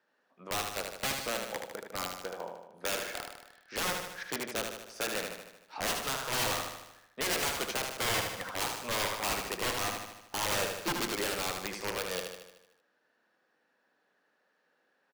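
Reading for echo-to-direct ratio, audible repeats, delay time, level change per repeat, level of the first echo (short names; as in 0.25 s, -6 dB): -3.5 dB, 7, 76 ms, -5.0 dB, -5.0 dB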